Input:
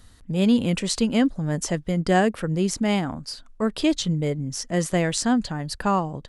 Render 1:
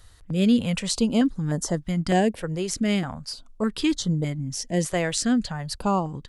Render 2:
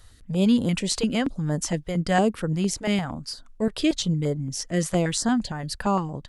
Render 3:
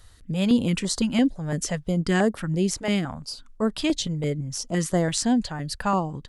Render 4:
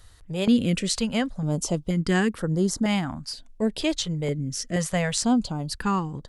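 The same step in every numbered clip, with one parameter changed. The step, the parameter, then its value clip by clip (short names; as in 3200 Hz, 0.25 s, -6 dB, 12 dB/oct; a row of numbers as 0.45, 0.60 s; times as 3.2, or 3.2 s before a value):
stepped notch, rate: 3.3, 8.7, 5.9, 2.1 Hz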